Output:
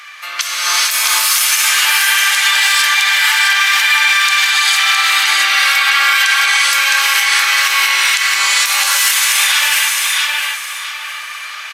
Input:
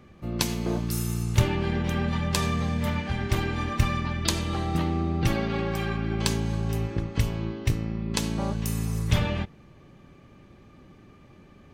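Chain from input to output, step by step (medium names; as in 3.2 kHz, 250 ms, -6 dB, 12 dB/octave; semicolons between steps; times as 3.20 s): high-pass 1.4 kHz 24 dB/octave; compression 8:1, threshold -44 dBFS, peak gain reduction 22.5 dB; short-mantissa float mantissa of 6-bit; feedback delay 662 ms, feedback 29%, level -4 dB; gated-style reverb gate 480 ms rising, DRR -7 dB; resampled via 32 kHz; loudness maximiser +30.5 dB; trim -1.5 dB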